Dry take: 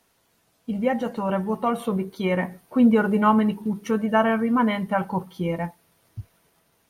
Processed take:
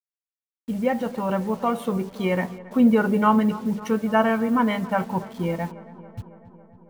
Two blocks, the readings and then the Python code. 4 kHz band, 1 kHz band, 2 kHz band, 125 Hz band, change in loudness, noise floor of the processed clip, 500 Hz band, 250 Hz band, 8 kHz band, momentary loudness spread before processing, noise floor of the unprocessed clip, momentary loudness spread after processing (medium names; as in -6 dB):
0.0 dB, 0.0 dB, 0.0 dB, 0.0 dB, 0.0 dB, under -85 dBFS, 0.0 dB, 0.0 dB, no reading, 13 LU, -67 dBFS, 16 LU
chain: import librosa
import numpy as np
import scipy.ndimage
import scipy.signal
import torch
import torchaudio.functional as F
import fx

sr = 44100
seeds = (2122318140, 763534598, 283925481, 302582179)

y = fx.delta_hold(x, sr, step_db=-43.0)
y = fx.echo_filtered(y, sr, ms=276, feedback_pct=72, hz=2400.0, wet_db=-18)